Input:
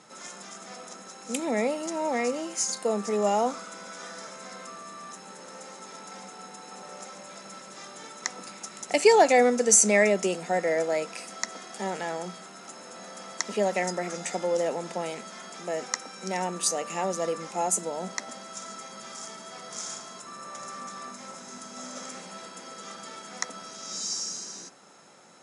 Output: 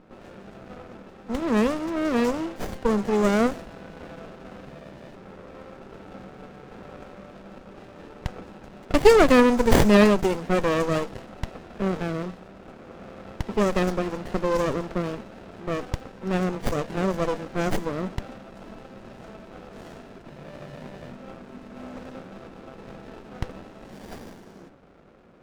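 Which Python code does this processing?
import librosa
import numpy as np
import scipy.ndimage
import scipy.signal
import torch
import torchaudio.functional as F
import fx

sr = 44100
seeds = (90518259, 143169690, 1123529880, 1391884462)

y = fx.env_lowpass(x, sr, base_hz=1200.0, full_db=-20.0)
y = fx.running_max(y, sr, window=33)
y = F.gain(torch.from_numpy(y), 5.5).numpy()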